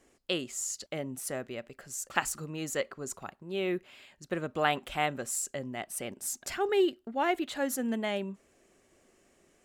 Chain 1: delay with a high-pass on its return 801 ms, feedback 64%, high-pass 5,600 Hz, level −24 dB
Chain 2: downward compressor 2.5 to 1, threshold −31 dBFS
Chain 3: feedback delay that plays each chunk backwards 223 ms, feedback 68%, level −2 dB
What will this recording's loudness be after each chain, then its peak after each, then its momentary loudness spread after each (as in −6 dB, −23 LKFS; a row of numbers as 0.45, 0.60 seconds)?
−33.0, −36.0, −30.0 LKFS; −8.5, −14.5, −8.0 dBFS; 11, 7, 9 LU